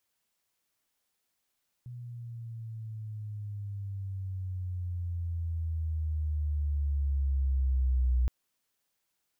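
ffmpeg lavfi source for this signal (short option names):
-f lavfi -i "aevalsrc='pow(10,(-22.5+17*(t/6.42-1))/20)*sin(2*PI*123*6.42/(-12*log(2)/12)*(exp(-12*log(2)/12*t/6.42)-1))':d=6.42:s=44100"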